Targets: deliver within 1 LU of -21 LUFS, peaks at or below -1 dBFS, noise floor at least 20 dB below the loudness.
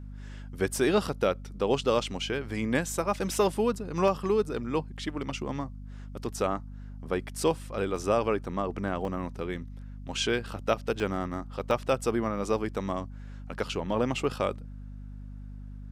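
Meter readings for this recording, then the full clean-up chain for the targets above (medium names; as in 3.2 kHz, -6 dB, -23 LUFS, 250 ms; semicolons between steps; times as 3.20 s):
dropouts 5; longest dropout 1.2 ms; hum 50 Hz; highest harmonic 250 Hz; hum level -39 dBFS; loudness -30.0 LUFS; peak level -10.5 dBFS; loudness target -21.0 LUFS
-> interpolate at 4.08/7.96/9.05/11.00/11.71 s, 1.2 ms; hum notches 50/100/150/200/250 Hz; trim +9 dB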